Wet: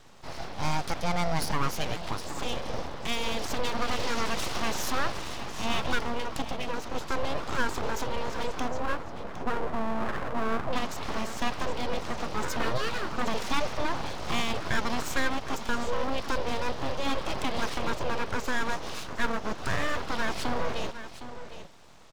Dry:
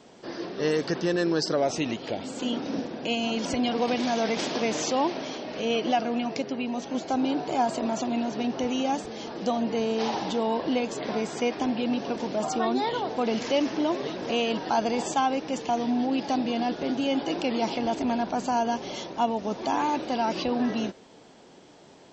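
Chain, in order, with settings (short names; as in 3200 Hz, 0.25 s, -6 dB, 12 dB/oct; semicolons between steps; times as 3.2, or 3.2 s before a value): 8.68–10.73 brick-wall FIR low-pass 1400 Hz; echo 0.761 s -12 dB; full-wave rectifier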